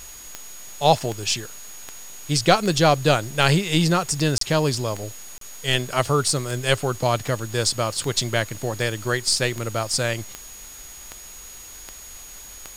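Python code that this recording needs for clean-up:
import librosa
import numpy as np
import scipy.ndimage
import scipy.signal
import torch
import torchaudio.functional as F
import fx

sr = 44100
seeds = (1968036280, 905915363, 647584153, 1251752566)

y = fx.fix_declick_ar(x, sr, threshold=10.0)
y = fx.notch(y, sr, hz=6700.0, q=30.0)
y = fx.fix_interpolate(y, sr, at_s=(4.38, 5.38), length_ms=33.0)
y = fx.noise_reduce(y, sr, print_start_s=11.22, print_end_s=11.72, reduce_db=27.0)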